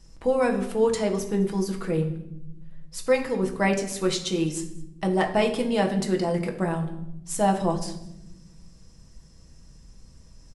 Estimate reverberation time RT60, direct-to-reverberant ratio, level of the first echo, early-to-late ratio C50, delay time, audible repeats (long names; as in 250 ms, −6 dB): 0.85 s, 2.0 dB, −22.5 dB, 9.5 dB, 210 ms, 1